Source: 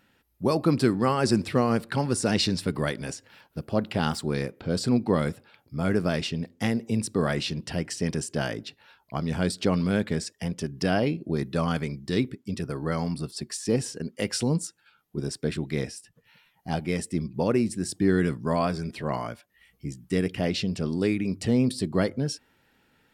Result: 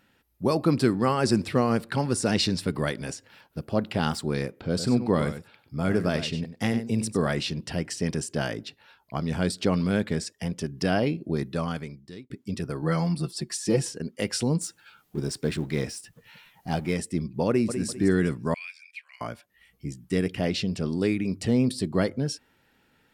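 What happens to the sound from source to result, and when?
4.69–7.27 s: delay 96 ms -11 dB
11.35–12.30 s: fade out linear
12.82–13.89 s: comb 5.9 ms, depth 74%
14.61–16.94 s: companding laws mixed up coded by mu
17.48–17.88 s: echo throw 200 ms, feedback 35%, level -9 dB
18.54–19.21 s: ladder high-pass 2.3 kHz, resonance 90%

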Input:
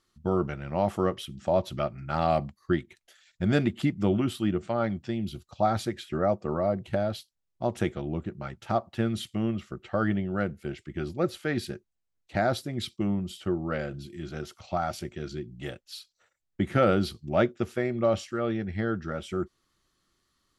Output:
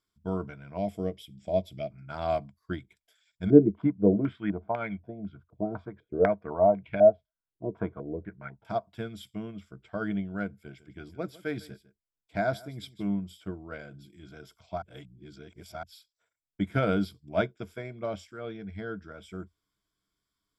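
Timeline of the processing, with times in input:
0.77–1.91 s: high-order bell 1.2 kHz -15 dB 1.1 oct
3.50–8.65 s: step-sequenced low-pass 4 Hz 380–2400 Hz
10.51–13.13 s: delay 153 ms -16 dB
14.82–15.83 s: reverse
whole clip: rippled EQ curve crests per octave 1.7, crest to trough 11 dB; upward expansion 1.5:1, over -33 dBFS

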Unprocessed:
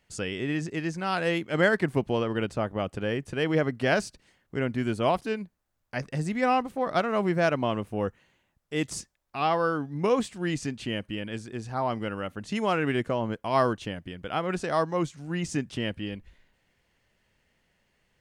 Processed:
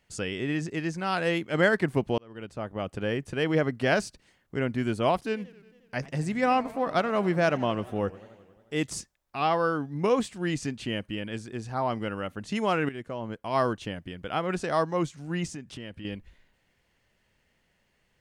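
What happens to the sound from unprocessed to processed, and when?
2.18–3.05 s: fade in
5.21–8.74 s: modulated delay 90 ms, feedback 71%, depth 217 cents, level -20 dB
12.89–14.23 s: fade in equal-power, from -14 dB
15.47–16.05 s: compression 2.5:1, threshold -40 dBFS

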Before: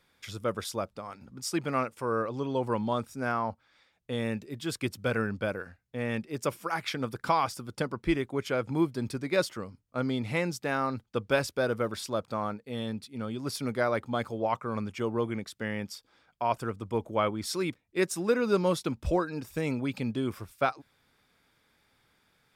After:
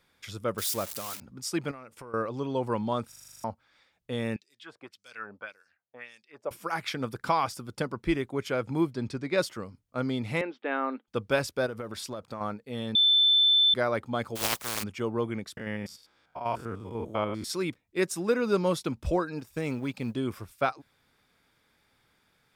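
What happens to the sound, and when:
0.58–1.20 s: zero-crossing glitches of -25.5 dBFS
1.71–2.14 s: compression 16:1, threshold -40 dBFS
3.08 s: stutter in place 0.04 s, 9 plays
4.36–6.51 s: LFO band-pass sine 1.8 Hz 600–6900 Hz
8.93–9.38 s: low-pass 6.3 kHz
10.41–11.08 s: Chebyshev band-pass 250–3400 Hz, order 4
11.66–12.41 s: compression 10:1, threshold -32 dBFS
12.95–13.74 s: bleep 3.53 kHz -18 dBFS
14.35–14.82 s: spectral contrast reduction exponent 0.17
15.57–17.50 s: spectrogram pixelated in time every 100 ms
19.39–20.15 s: companding laws mixed up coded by A

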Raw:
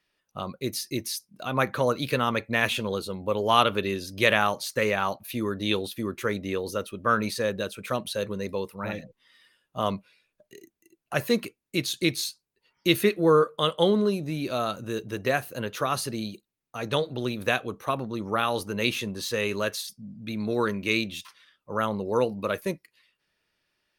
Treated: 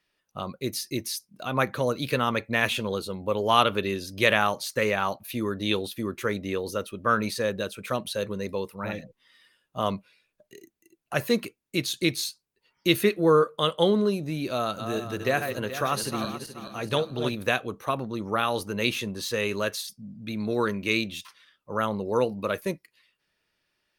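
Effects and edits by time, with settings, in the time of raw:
1.64–2.04 s: dynamic bell 1.2 kHz, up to -5 dB, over -38 dBFS, Q 0.76
14.54–17.35 s: backward echo that repeats 214 ms, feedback 56%, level -7 dB

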